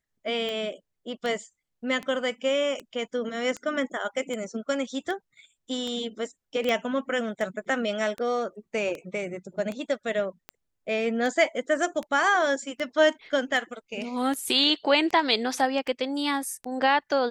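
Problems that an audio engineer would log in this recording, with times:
scratch tick 78 rpm −20 dBFS
0:06.69: click −14 dBFS

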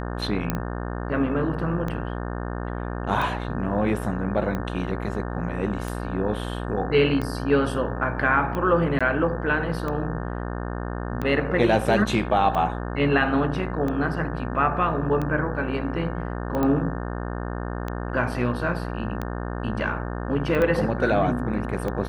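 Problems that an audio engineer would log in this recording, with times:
mains buzz 60 Hz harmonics 30 −30 dBFS
scratch tick 45 rpm −17 dBFS
0:00.50: click −10 dBFS
0:08.99–0:09.01: drop-out 16 ms
0:16.63: click −13 dBFS
0:20.62: click −13 dBFS

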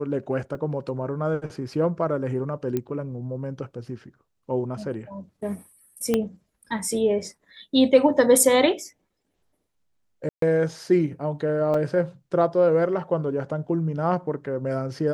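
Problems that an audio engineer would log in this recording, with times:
0:00.55: drop-out 2.3 ms
0:02.77: click −14 dBFS
0:06.14: click −9 dBFS
0:10.29–0:10.42: drop-out 133 ms
0:11.74: drop-out 3.8 ms

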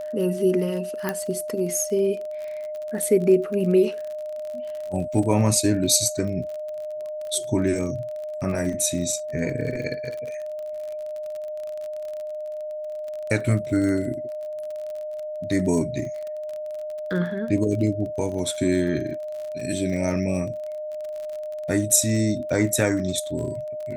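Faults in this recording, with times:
surface crackle 39 per second −31 dBFS
whistle 610 Hz −29 dBFS
0:01.09: click −11 dBFS

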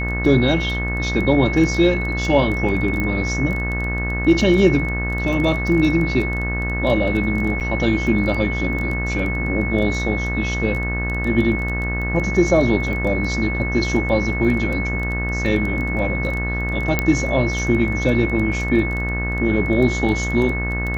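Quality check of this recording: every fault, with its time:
mains buzz 60 Hz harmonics 32 −24 dBFS
surface crackle 12 per second −24 dBFS
whistle 2,200 Hz −25 dBFS
0:03.00: click −11 dBFS
0:07.60–0:07.61: drop-out 8 ms
0:16.99: click −4 dBFS

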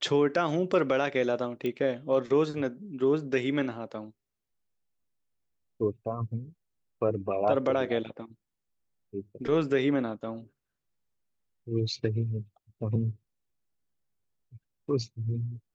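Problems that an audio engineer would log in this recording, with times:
0:01.66: click −21 dBFS

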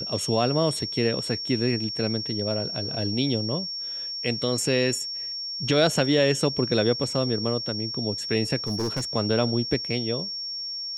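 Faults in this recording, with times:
whistle 5,500 Hz −30 dBFS
0:08.67–0:09.05: clipping −22.5 dBFS

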